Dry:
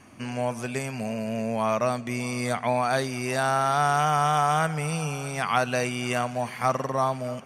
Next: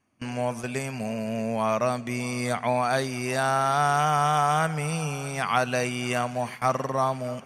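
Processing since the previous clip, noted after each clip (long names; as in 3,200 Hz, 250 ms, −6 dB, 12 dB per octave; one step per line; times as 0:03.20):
noise gate with hold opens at −24 dBFS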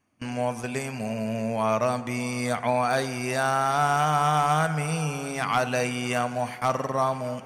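hard clipping −15 dBFS, distortion −24 dB
feedback delay network reverb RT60 1.5 s, high-frequency decay 0.35×, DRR 12 dB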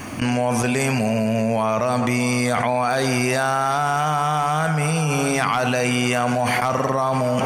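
envelope flattener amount 100%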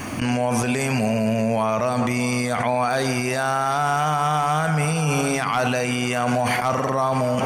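brickwall limiter −14.5 dBFS, peak gain reduction 8.5 dB
level +2 dB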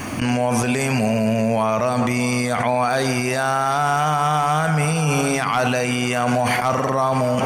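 surface crackle 110 per second −39 dBFS
level +2 dB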